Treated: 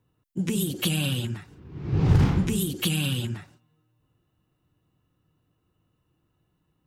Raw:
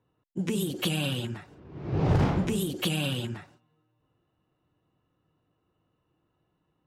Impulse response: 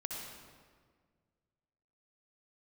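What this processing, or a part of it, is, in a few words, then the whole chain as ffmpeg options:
smiley-face EQ: -filter_complex "[0:a]asettb=1/sr,asplit=3[s0][s1][s2];[s0]atrim=end=1.364[s3];[s1]atrim=start=1.36:end=3.22,asetpts=PTS-STARTPTS,afade=t=in:d=0.004:c=qsin,afade=t=out:st=1.856:d=0.004:c=qsin,equalizer=f=620:t=o:w=0.37:g=-7[s4];[s2]atrim=start=3.216[s5];[s3][s4]acrossfade=d=0.004:c1=hsin:c2=qsin[s6];[s6][s5]acrossfade=d=0.004:c1=qsin:c2=hsin,lowshelf=f=160:g=5.5,equalizer=f=640:t=o:w=2.1:g=-5,highshelf=f=7800:g=7,volume=1.26"

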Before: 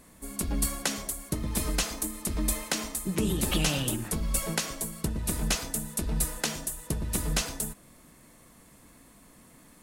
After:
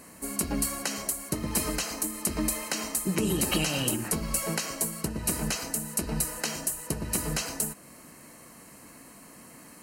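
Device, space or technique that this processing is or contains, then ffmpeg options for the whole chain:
PA system with an anti-feedback notch: -af "highpass=f=190:p=1,asuperstop=centerf=3500:order=8:qfactor=7,alimiter=limit=0.0841:level=0:latency=1:release=307,volume=2.24"

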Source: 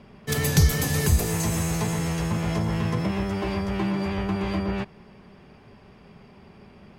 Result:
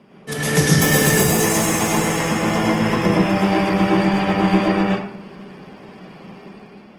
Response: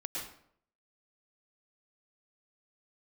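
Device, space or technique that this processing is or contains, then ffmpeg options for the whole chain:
far-field microphone of a smart speaker: -filter_complex "[0:a]bandreject=f=4300:w=8.7[s0];[1:a]atrim=start_sample=2205[s1];[s0][s1]afir=irnorm=-1:irlink=0,highpass=f=150:w=0.5412,highpass=f=150:w=1.3066,dynaudnorm=f=120:g=9:m=2,volume=1.68" -ar 48000 -c:a libopus -b:a 20k

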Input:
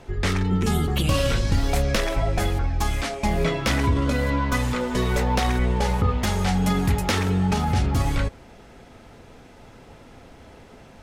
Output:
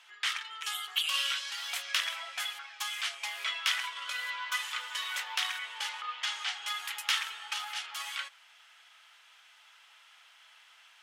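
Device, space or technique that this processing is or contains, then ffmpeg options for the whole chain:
headphones lying on a table: -filter_complex "[0:a]asettb=1/sr,asplit=3[s0][s1][s2];[s0]atrim=end=5.894[s3];[s1]atrim=start=5.89:end=6.68,asetpts=PTS-STARTPTS,afade=t=in:d=0.004:c=qsin,afade=t=out:st=0.786:d=0.004:c=qsin,lowpass=6500[s4];[s2]atrim=start=6.676[s5];[s3][s4]acrossfade=d=0.004:c1=hsin:c2=qsin[s6];[s6][s5]acrossfade=d=0.004:c1=qsin:c2=hsin,highpass=f=1200:w=0.5412,highpass=f=1200:w=1.3066,lowshelf=f=110:g=5.5,equalizer=f=3100:t=o:w=0.42:g=9,volume=0.562"

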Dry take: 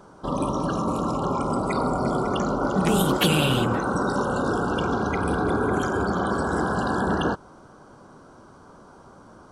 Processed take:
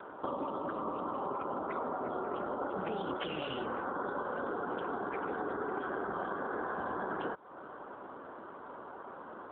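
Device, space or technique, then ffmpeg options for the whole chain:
voicemail: -af "highpass=350,lowpass=2700,acompressor=threshold=0.0112:ratio=6,volume=1.88" -ar 8000 -c:a libopencore_amrnb -b:a 7400

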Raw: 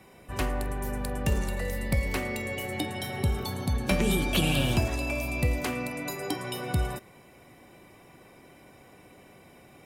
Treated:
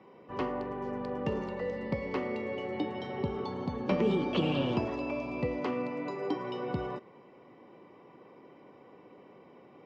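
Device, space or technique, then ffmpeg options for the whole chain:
kitchen radio: -af "highpass=210,equalizer=f=460:t=q:w=4:g=4,equalizer=f=690:t=q:w=4:g=-6,equalizer=f=1000:t=q:w=4:g=3,equalizer=f=1600:t=q:w=4:g=-9,equalizer=f=2400:t=q:w=4:g=-7,equalizer=f=3800:t=q:w=4:g=-8,lowpass=f=4600:w=0.5412,lowpass=f=4600:w=1.3066,aemphasis=mode=reproduction:type=75fm"

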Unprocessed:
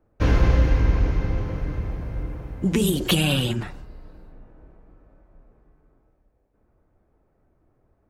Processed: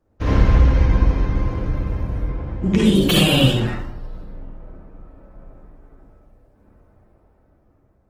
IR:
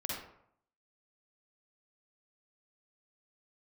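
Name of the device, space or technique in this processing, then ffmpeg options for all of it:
speakerphone in a meeting room: -filter_complex "[0:a]asettb=1/sr,asplit=3[s0][s1][s2];[s0]atrim=end=2.224[s3];[s1]atrim=start=2.22:end=2.96,asetpts=PTS-STARTPTS,afade=t=in:d=0.004:c=qsin,afade=t=out:st=0.736:d=0.004:c=qsin,lowpass=5500[s4];[s2]atrim=start=2.956[s5];[s3][s4]acrossfade=d=0.004:c1=hsin:c2=qsin[s6];[s6][s5]acrossfade=d=0.004:c1=qsin:c2=hsin[s7];[1:a]atrim=start_sample=2205[s8];[s7][s8]afir=irnorm=-1:irlink=0,dynaudnorm=f=560:g=7:m=3.98" -ar 48000 -c:a libopus -b:a 16k

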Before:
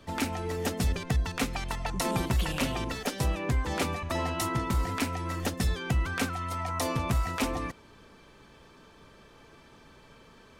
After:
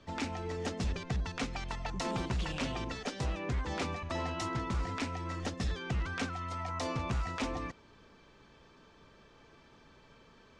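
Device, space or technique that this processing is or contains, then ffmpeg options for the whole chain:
synthesiser wavefolder: -af "aeval=exprs='0.075*(abs(mod(val(0)/0.075+3,4)-2)-1)':c=same,lowpass=f=7000:w=0.5412,lowpass=f=7000:w=1.3066,volume=0.562"

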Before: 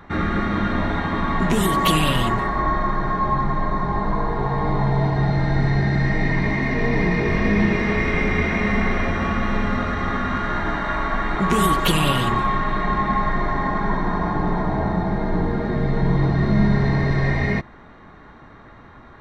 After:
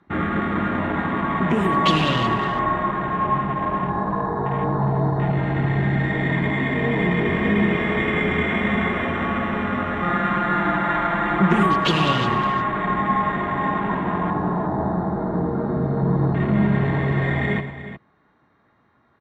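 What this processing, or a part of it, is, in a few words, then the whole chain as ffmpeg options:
over-cleaned archive recording: -filter_complex "[0:a]asettb=1/sr,asplit=3[s0][s1][s2];[s0]atrim=end=10.024[s3];[s1]atrim=start=10.02:end=11.63,asetpts=PTS-STARTPTS,afade=t=in:d=0.004:c=qsin,afade=t=out:st=1.606:d=0.004:c=qsin,aecho=1:1:5.8:0.93,atrim=end_sample=71001[s4];[s2]atrim=start=11.626[s5];[s3][s4]acrossfade=d=0.004:c1=hsin:c2=qsin[s6];[s6][s5]acrossfade=d=0.004:c1=qsin:c2=hsin,highpass=100,lowpass=8000,afwtdn=0.0316,aecho=1:1:108|361:0.211|0.237"

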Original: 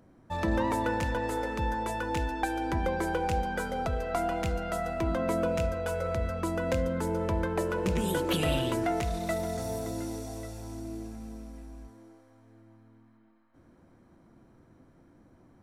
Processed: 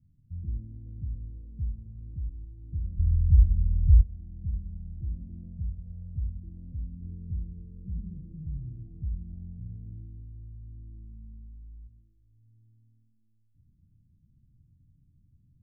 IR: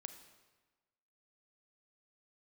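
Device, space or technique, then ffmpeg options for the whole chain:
club heard from the street: -filter_complex "[0:a]alimiter=limit=0.0944:level=0:latency=1:release=423,lowpass=f=140:w=0.5412,lowpass=f=140:w=1.3066[s0];[1:a]atrim=start_sample=2205[s1];[s0][s1]afir=irnorm=-1:irlink=0,asplit=3[s2][s3][s4];[s2]afade=t=out:st=2.98:d=0.02[s5];[s3]asubboost=boost=10.5:cutoff=120,afade=t=in:st=2.98:d=0.02,afade=t=out:st=4.01:d=0.02[s6];[s4]afade=t=in:st=4.01:d=0.02[s7];[s5][s6][s7]amix=inputs=3:normalize=0,volume=2.37"

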